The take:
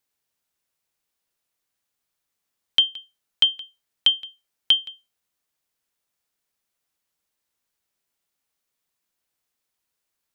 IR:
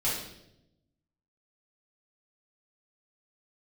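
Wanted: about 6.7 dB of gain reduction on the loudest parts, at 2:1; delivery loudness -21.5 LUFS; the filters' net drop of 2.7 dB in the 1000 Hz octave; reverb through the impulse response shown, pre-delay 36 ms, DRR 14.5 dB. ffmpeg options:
-filter_complex "[0:a]equalizer=f=1k:t=o:g=-3.5,acompressor=threshold=-25dB:ratio=2,asplit=2[a][b];[1:a]atrim=start_sample=2205,adelay=36[c];[b][c]afir=irnorm=-1:irlink=0,volume=-22.5dB[d];[a][d]amix=inputs=2:normalize=0,volume=5.5dB"

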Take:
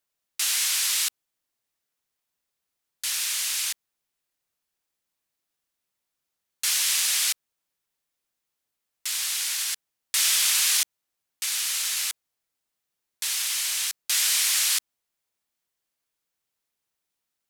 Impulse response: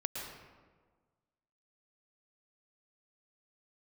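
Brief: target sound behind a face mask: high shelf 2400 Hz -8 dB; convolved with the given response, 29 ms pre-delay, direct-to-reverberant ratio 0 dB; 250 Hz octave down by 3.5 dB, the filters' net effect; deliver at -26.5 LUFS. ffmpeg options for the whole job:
-filter_complex "[0:a]equalizer=f=250:t=o:g=-5,asplit=2[a][b];[1:a]atrim=start_sample=2205,adelay=29[c];[b][c]afir=irnorm=-1:irlink=0,volume=-2dB[d];[a][d]amix=inputs=2:normalize=0,highshelf=f=2.4k:g=-8,volume=1.5dB"

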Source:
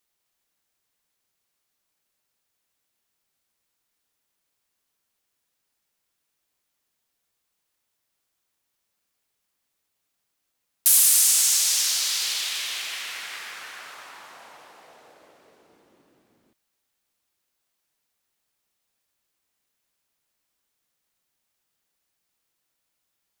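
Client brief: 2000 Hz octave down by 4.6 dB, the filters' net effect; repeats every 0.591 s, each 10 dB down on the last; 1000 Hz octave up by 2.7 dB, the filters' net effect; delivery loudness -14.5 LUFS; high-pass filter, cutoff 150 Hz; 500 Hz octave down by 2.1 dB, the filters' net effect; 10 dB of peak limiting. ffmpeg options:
-af "highpass=150,equalizer=f=500:t=o:g=-5,equalizer=f=1k:t=o:g=7,equalizer=f=2k:t=o:g=-7.5,alimiter=limit=-14.5dB:level=0:latency=1,aecho=1:1:591|1182|1773|2364:0.316|0.101|0.0324|0.0104,volume=10dB"

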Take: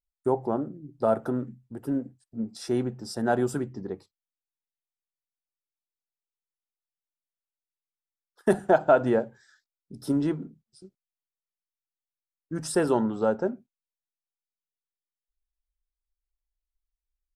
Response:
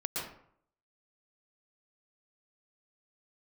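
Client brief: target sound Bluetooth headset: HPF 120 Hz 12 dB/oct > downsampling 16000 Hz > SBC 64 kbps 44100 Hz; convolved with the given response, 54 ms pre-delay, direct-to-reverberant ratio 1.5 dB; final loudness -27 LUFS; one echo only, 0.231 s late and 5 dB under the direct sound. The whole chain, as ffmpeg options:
-filter_complex "[0:a]aecho=1:1:231:0.562,asplit=2[a][b];[1:a]atrim=start_sample=2205,adelay=54[c];[b][c]afir=irnorm=-1:irlink=0,volume=-5.5dB[d];[a][d]amix=inputs=2:normalize=0,highpass=120,aresample=16000,aresample=44100,volume=-2.5dB" -ar 44100 -c:a sbc -b:a 64k

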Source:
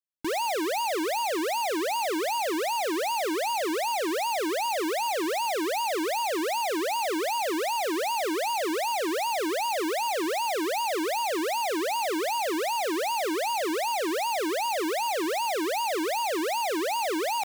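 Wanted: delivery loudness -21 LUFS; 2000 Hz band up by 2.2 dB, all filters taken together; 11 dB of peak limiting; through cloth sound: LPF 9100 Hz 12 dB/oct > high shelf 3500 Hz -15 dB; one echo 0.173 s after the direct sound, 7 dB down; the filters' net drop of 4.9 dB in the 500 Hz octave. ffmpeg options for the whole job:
-af "equalizer=f=500:t=o:g=-6.5,equalizer=f=2k:t=o:g=8,alimiter=level_in=8.5dB:limit=-24dB:level=0:latency=1,volume=-8.5dB,lowpass=9.1k,highshelf=f=3.5k:g=-15,aecho=1:1:173:0.447,volume=17.5dB"

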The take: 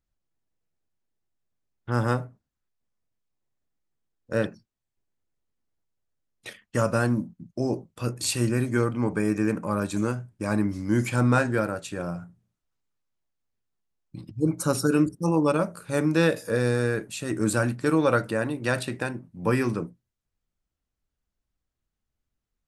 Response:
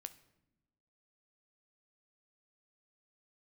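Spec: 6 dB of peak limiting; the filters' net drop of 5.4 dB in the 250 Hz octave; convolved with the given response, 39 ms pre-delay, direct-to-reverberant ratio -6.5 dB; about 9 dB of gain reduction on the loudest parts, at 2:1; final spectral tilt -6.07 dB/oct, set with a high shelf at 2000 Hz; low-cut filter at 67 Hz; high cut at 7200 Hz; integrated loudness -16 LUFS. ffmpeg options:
-filter_complex "[0:a]highpass=67,lowpass=7.2k,equalizer=f=250:t=o:g=-7,highshelf=f=2k:g=-7,acompressor=threshold=-36dB:ratio=2,alimiter=level_in=1.5dB:limit=-24dB:level=0:latency=1,volume=-1.5dB,asplit=2[a][b];[1:a]atrim=start_sample=2205,adelay=39[c];[b][c]afir=irnorm=-1:irlink=0,volume=11.5dB[d];[a][d]amix=inputs=2:normalize=0,volume=15dB"

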